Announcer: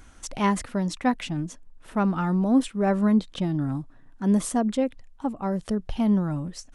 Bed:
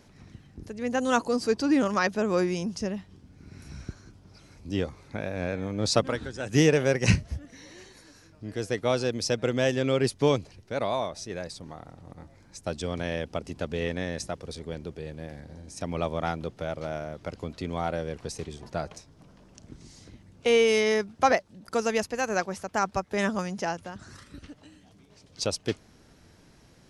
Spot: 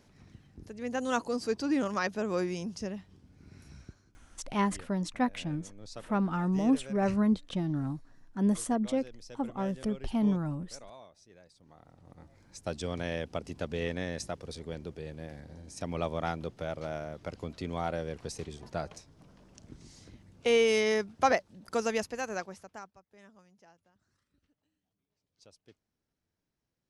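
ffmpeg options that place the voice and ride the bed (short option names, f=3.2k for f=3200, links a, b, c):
-filter_complex "[0:a]adelay=4150,volume=-5.5dB[a];[1:a]volume=12.5dB,afade=t=out:st=3.51:d=0.7:silence=0.158489,afade=t=in:st=11.55:d=1.05:silence=0.11885,afade=t=out:st=21.85:d=1.08:silence=0.0473151[b];[a][b]amix=inputs=2:normalize=0"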